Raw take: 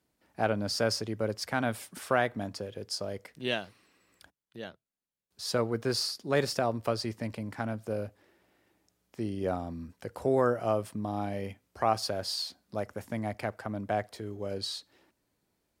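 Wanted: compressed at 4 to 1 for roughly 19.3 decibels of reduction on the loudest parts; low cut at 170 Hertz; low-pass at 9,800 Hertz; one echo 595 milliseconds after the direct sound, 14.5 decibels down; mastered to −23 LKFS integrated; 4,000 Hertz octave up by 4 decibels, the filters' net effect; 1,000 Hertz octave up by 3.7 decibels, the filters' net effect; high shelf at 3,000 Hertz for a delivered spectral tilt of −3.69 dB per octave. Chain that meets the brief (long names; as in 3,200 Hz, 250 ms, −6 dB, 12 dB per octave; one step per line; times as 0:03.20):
high-pass filter 170 Hz
low-pass filter 9,800 Hz
parametric band 1,000 Hz +5.5 dB
high-shelf EQ 3,000 Hz −3.5 dB
parametric band 4,000 Hz +8 dB
downward compressor 4 to 1, threshold −43 dBFS
single-tap delay 595 ms −14.5 dB
level +22 dB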